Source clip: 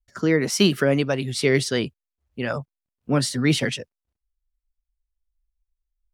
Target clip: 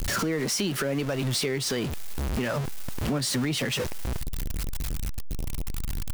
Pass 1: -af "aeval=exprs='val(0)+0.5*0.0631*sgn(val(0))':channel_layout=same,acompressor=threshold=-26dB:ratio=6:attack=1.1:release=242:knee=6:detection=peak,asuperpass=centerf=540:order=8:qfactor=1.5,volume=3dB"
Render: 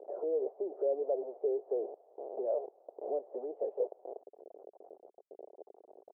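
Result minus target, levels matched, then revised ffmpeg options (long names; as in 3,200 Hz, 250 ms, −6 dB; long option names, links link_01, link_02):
500 Hz band +6.0 dB
-af "aeval=exprs='val(0)+0.5*0.0631*sgn(val(0))':channel_layout=same,acompressor=threshold=-26dB:ratio=6:attack=1.1:release=242:knee=6:detection=peak,volume=3dB"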